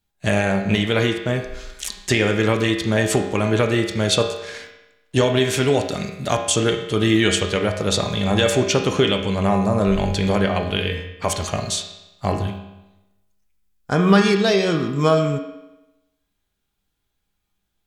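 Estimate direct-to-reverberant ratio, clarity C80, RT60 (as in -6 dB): 1.5 dB, 8.5 dB, 0.95 s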